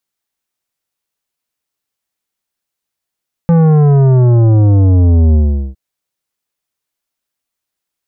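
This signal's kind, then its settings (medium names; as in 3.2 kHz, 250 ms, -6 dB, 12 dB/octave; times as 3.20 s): sub drop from 170 Hz, over 2.26 s, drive 11.5 dB, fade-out 0.41 s, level -6.5 dB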